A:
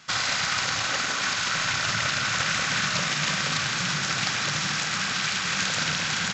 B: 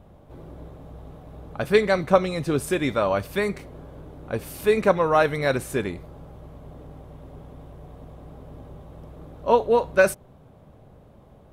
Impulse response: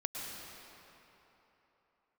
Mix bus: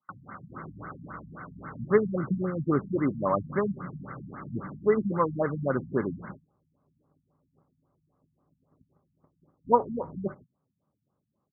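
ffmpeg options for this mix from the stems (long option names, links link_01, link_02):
-filter_complex "[0:a]acrossover=split=300[link_01][link_02];[link_02]acompressor=threshold=-35dB:ratio=4[link_03];[link_01][link_03]amix=inputs=2:normalize=0,flanger=delay=8.2:depth=9.9:regen=-48:speed=1.2:shape=triangular,volume=0dB[link_04];[1:a]adynamicequalizer=threshold=0.0282:dfrequency=940:dqfactor=0.73:tfrequency=940:tqfactor=0.73:attack=5:release=100:ratio=0.375:range=3:mode=cutabove:tftype=bell,adelay=200,volume=0.5dB[link_05];[link_04][link_05]amix=inputs=2:normalize=0,highpass=140,equalizer=frequency=460:width_type=q:width=4:gain=-5,equalizer=frequency=670:width_type=q:width=4:gain=-5,equalizer=frequency=1200:width_type=q:width=4:gain=9,equalizer=frequency=1800:width_type=q:width=4:gain=-8,lowpass=frequency=9500:width=0.5412,lowpass=frequency=9500:width=1.3066,agate=range=-25dB:threshold=-41dB:ratio=16:detection=peak,afftfilt=real='re*lt(b*sr/1024,230*pow(2200/230,0.5+0.5*sin(2*PI*3.7*pts/sr)))':imag='im*lt(b*sr/1024,230*pow(2200/230,0.5+0.5*sin(2*PI*3.7*pts/sr)))':win_size=1024:overlap=0.75"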